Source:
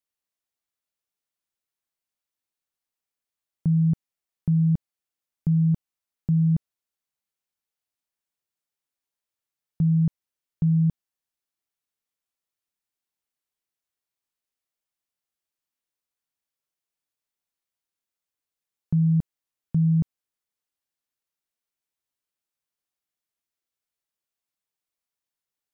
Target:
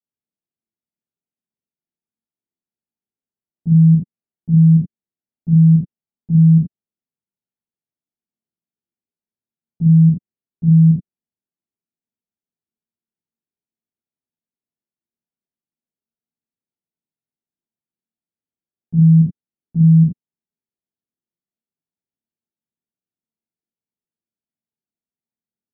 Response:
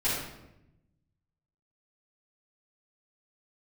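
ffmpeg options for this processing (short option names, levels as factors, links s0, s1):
-filter_complex "[0:a]bandpass=f=210:t=q:w=1.5:csg=0[s0];[1:a]atrim=start_sample=2205,atrim=end_sample=3969,asetrate=39249,aresample=44100[s1];[s0][s1]afir=irnorm=-1:irlink=0,volume=0.841"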